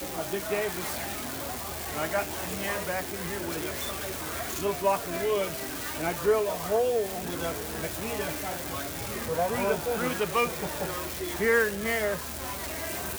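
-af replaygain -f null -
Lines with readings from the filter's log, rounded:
track_gain = +9.6 dB
track_peak = 0.171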